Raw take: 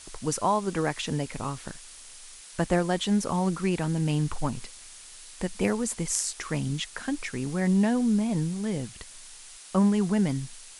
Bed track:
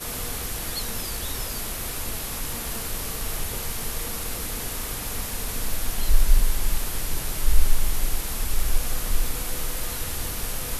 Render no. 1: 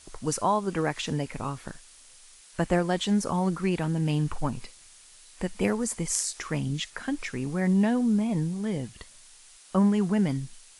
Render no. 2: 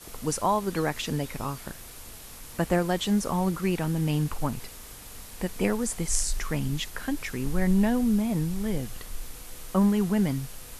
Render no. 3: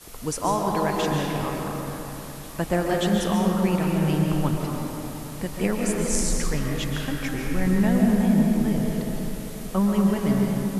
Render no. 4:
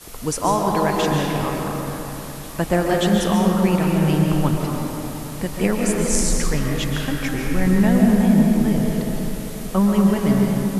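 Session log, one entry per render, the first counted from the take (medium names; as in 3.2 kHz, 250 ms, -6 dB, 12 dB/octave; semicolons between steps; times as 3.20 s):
noise print and reduce 6 dB
add bed track -14 dB
repeats whose band climbs or falls 360 ms, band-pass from 220 Hz, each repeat 1.4 oct, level -11 dB; algorithmic reverb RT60 3.5 s, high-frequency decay 0.45×, pre-delay 95 ms, DRR -1 dB
trim +4.5 dB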